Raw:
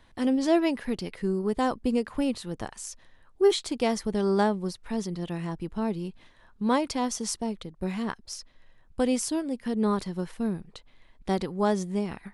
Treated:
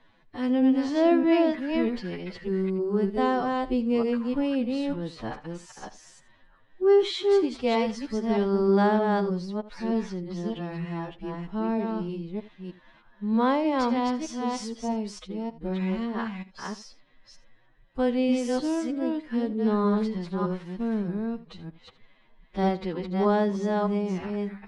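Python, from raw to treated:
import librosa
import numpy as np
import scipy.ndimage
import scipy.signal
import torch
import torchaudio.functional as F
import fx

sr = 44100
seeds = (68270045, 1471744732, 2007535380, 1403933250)

y = fx.reverse_delay(x, sr, ms=155, wet_db=-2.5)
y = scipy.signal.sosfilt(scipy.signal.butter(2, 3800.0, 'lowpass', fs=sr, output='sos'), y)
y = fx.peak_eq(y, sr, hz=63.0, db=-9.0, octaves=0.64)
y = fx.stretch_vocoder(y, sr, factor=2.0)
y = y + 10.0 ** (-17.0 / 20.0) * np.pad(y, (int(80 * sr / 1000.0), 0))[:len(y)]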